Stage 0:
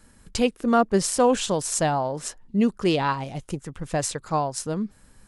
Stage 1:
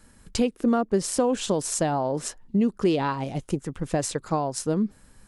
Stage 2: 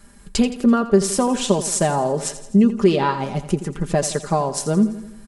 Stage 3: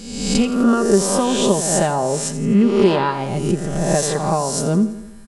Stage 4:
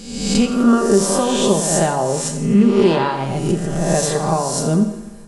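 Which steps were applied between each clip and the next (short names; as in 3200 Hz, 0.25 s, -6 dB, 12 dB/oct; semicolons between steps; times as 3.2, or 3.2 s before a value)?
compressor 6:1, threshold -24 dBFS, peak gain reduction 10 dB; dynamic EQ 310 Hz, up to +7 dB, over -40 dBFS, Q 0.73
comb 5 ms, depth 60%; on a send: feedback echo 84 ms, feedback 54%, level -13 dB; on the sum: gain +4.5 dB
spectral swells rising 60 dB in 0.97 s; gain -1 dB
two-slope reverb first 0.73 s, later 3.1 s, from -21 dB, DRR 6.5 dB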